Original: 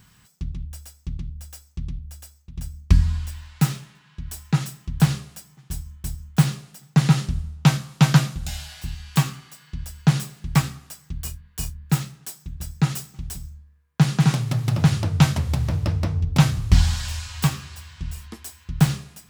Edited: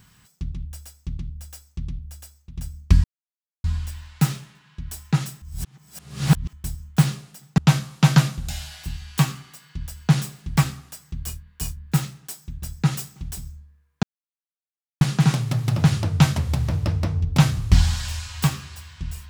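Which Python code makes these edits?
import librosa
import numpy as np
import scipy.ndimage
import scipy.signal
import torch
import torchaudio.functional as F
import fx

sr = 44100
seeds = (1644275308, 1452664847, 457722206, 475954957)

y = fx.edit(x, sr, fx.insert_silence(at_s=3.04, length_s=0.6),
    fx.reverse_span(start_s=4.82, length_s=1.11),
    fx.cut(start_s=6.98, length_s=0.58),
    fx.insert_silence(at_s=14.01, length_s=0.98), tone=tone)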